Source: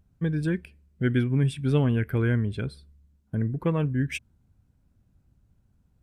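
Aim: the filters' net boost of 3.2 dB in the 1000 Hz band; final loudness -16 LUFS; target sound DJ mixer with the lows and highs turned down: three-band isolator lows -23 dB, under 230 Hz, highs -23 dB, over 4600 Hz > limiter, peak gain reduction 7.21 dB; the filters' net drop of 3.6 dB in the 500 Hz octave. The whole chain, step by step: three-band isolator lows -23 dB, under 230 Hz, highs -23 dB, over 4600 Hz; bell 500 Hz -4.5 dB; bell 1000 Hz +5 dB; gain +20 dB; limiter -3 dBFS

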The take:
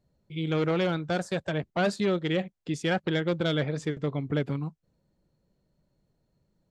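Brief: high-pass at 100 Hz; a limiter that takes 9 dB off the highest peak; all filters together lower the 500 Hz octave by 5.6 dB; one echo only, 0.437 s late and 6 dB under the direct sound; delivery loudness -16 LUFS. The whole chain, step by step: HPF 100 Hz; bell 500 Hz -7 dB; limiter -24 dBFS; echo 0.437 s -6 dB; gain +19.5 dB

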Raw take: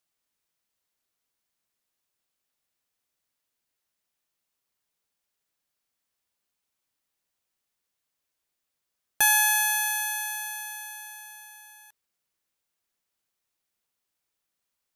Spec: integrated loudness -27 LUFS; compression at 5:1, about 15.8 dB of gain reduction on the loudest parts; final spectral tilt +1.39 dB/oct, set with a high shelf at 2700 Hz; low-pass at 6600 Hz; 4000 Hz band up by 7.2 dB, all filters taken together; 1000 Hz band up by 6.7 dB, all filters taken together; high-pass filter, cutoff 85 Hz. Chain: HPF 85 Hz; LPF 6600 Hz; bell 1000 Hz +7.5 dB; high shelf 2700 Hz +6.5 dB; bell 4000 Hz +3.5 dB; compressor 5:1, threshold -32 dBFS; gain +6.5 dB

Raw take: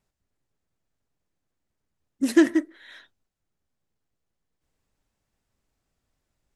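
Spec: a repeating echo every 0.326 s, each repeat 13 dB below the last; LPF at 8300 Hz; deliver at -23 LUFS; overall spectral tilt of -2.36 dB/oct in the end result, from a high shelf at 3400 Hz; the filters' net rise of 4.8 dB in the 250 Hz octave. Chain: LPF 8300 Hz; bell 250 Hz +7 dB; high shelf 3400 Hz -5.5 dB; feedback echo 0.326 s, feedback 22%, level -13 dB; gain -4.5 dB

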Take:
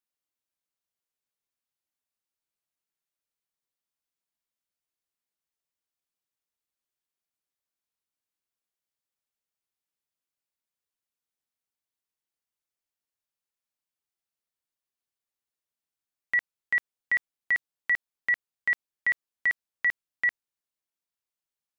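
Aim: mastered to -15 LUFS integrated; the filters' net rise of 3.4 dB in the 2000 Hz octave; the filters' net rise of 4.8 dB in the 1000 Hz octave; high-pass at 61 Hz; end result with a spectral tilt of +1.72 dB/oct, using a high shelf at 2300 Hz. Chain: HPF 61 Hz; bell 1000 Hz +6 dB; bell 2000 Hz +4.5 dB; high shelf 2300 Hz -5.5 dB; gain +9.5 dB

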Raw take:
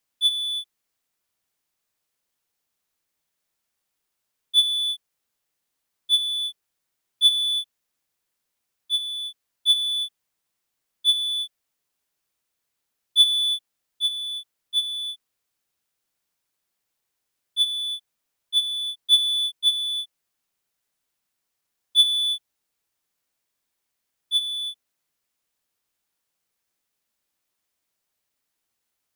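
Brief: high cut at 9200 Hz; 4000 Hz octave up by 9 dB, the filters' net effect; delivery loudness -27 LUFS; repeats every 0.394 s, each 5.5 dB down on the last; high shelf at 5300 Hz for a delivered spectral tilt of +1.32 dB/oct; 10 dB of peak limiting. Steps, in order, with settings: LPF 9200 Hz; bell 4000 Hz +8.5 dB; high shelf 5300 Hz +6.5 dB; limiter -8.5 dBFS; feedback echo 0.394 s, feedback 53%, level -5.5 dB; gain -12 dB

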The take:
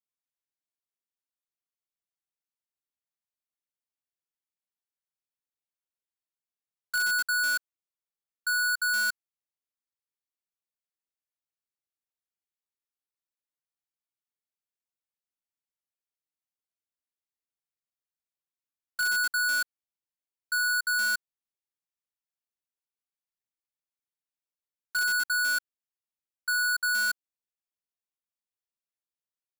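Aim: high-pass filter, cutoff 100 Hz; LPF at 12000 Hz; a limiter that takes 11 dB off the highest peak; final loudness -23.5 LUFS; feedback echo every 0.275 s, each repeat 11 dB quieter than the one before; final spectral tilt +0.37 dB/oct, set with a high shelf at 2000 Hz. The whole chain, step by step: HPF 100 Hz; LPF 12000 Hz; high shelf 2000 Hz -8 dB; limiter -38 dBFS; feedback echo 0.275 s, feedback 28%, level -11 dB; gain +18 dB

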